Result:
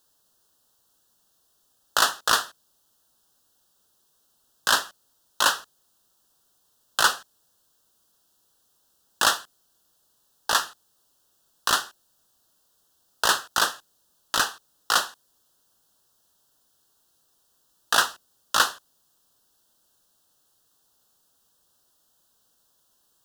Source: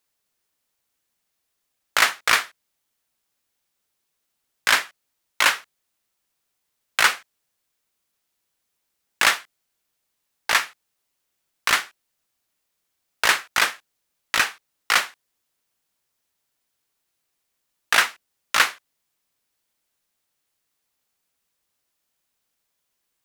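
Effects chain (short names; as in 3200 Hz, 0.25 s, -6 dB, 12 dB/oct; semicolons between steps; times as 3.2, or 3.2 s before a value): G.711 law mismatch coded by mu; Butterworth band-stop 2200 Hz, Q 1.5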